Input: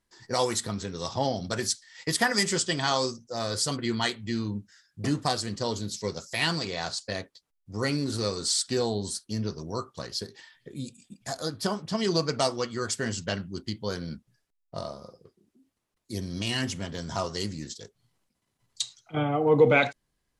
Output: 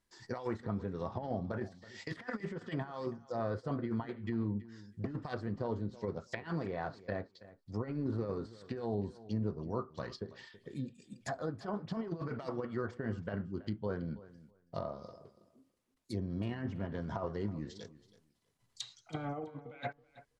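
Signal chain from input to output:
dynamic equaliser 1,700 Hz, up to +5 dB, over −45 dBFS, Q 1.8
compressor whose output falls as the input rises −29 dBFS, ratio −0.5
treble cut that deepens with the level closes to 990 Hz, closed at −27 dBFS
on a send: repeating echo 326 ms, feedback 16%, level −18 dB
on the sum: level −6 dB

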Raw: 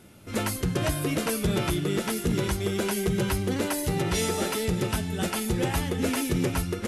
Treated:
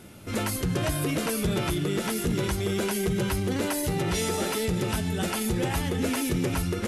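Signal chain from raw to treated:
brickwall limiter −24 dBFS, peak gain reduction 6 dB
level +4.5 dB

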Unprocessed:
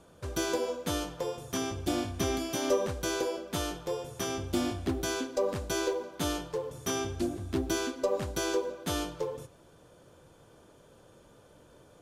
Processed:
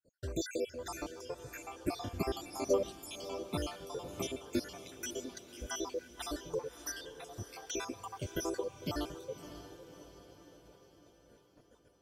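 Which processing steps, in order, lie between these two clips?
time-frequency cells dropped at random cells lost 70%
downward expander −56 dBFS
feedback delay with all-pass diffusion 591 ms, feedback 54%, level −12 dB
level −2 dB

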